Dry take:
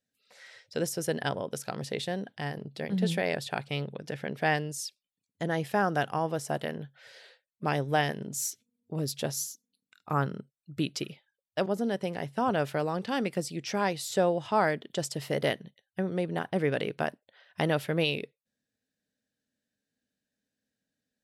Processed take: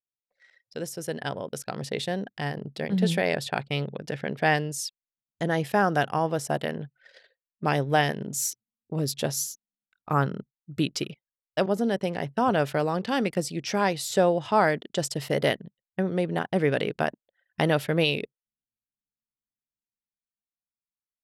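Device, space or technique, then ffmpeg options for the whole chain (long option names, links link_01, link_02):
voice memo with heavy noise removal: -af "anlmdn=0.00631,dynaudnorm=framelen=100:gausssize=31:maxgain=9dB,volume=-4.5dB"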